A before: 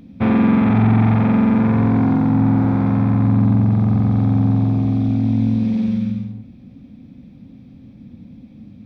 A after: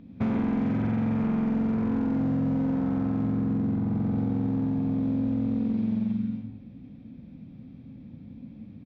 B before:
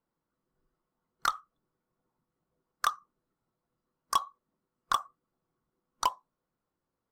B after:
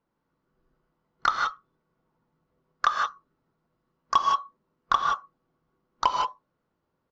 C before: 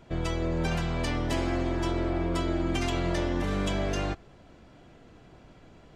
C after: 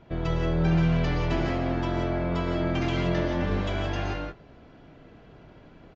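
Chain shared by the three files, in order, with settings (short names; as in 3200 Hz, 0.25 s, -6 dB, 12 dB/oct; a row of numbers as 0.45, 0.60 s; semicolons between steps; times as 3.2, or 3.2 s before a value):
air absorption 160 m; non-linear reverb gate 0.2 s rising, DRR 0.5 dB; one-sided clip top -15.5 dBFS, bottom -7.5 dBFS; dynamic EQ 180 Hz, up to +5 dB, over -29 dBFS, Q 0.98; downsampling 16000 Hz; compressor 5:1, threshold -18 dBFS; match loudness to -27 LUFS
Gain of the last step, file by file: -6.0, +6.0, +0.5 dB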